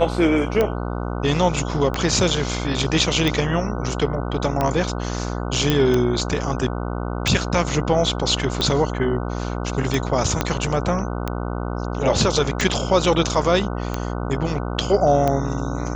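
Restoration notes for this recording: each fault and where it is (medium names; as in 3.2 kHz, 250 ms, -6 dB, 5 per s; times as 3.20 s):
buzz 60 Hz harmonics 25 -26 dBFS
tick 45 rpm -8 dBFS
5.70 s: pop -5 dBFS
10.41 s: pop -4 dBFS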